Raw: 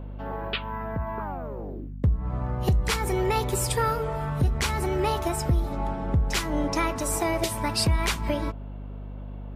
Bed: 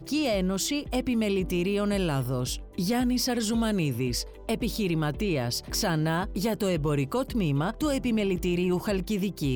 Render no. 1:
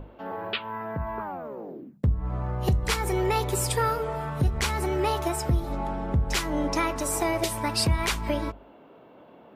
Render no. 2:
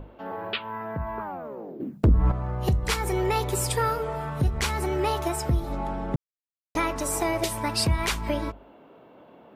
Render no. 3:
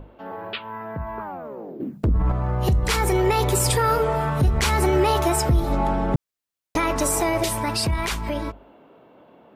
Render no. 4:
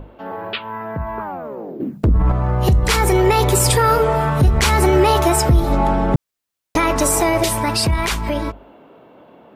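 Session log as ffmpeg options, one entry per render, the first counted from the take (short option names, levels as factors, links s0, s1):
-af "bandreject=f=50:t=h:w=6,bandreject=f=100:t=h:w=6,bandreject=f=150:t=h:w=6,bandreject=f=200:t=h:w=6,bandreject=f=250:t=h:w=6"
-filter_complex "[0:a]asettb=1/sr,asplit=3[s0][s1][s2];[s0]atrim=end=1.804[s3];[s1]atrim=start=1.8:end=2.32,asetpts=PTS-STARTPTS,afade=t=in:d=0.004:c=qsin,afade=t=out:st=0.516:d=0.004:c=qsin,aeval=exprs='0.224*sin(PI/2*2.24*val(0)/0.224)':c=same[s4];[s2]atrim=start=2.316[s5];[s3][s4]acrossfade=d=0.004:c1=hsin:c2=qsin[s6];[s6][s5]acrossfade=d=0.004:c1=qsin:c2=hsin,asplit=3[s7][s8][s9];[s7]atrim=end=6.16,asetpts=PTS-STARTPTS,afade=t=out:st=6.156:d=0.004:c=hsin[s10];[s8]atrim=start=6.16:end=6.75,asetpts=PTS-STARTPTS,volume=0[s11];[s9]atrim=start=6.75,asetpts=PTS-STARTPTS,afade=t=in:d=0.004:c=hsin[s12];[s10][s11][s12]concat=n=3:v=0:a=1"
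-af "alimiter=limit=0.106:level=0:latency=1:release=15,dynaudnorm=f=270:g=17:m=2.66"
-af "volume=1.88"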